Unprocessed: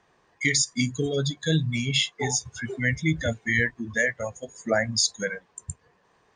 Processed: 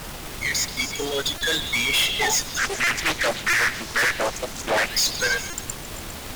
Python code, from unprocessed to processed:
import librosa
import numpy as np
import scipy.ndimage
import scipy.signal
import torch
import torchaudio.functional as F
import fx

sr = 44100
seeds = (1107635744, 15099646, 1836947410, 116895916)

y = fx.fade_in_head(x, sr, length_s=2.1)
y = scipy.signal.sosfilt(scipy.signal.butter(2, 720.0, 'highpass', fs=sr, output='sos'), y)
y = fx.high_shelf(y, sr, hz=7600.0, db=-9.0)
y = fx.leveller(y, sr, passes=5)
y = fx.dmg_noise_colour(y, sr, seeds[0], colour='pink', level_db=-32.0)
y = fx.tube_stage(y, sr, drive_db=17.0, bias=0.55)
y = fx.echo_stepped(y, sr, ms=135, hz=3100.0, octaves=0.7, feedback_pct=70, wet_db=-6.0)
y = fx.buffer_glitch(y, sr, at_s=(1.38, 2.84, 3.5, 5.5), block=128, repeats=10)
y = fx.doppler_dist(y, sr, depth_ms=0.75, at=(2.58, 4.9))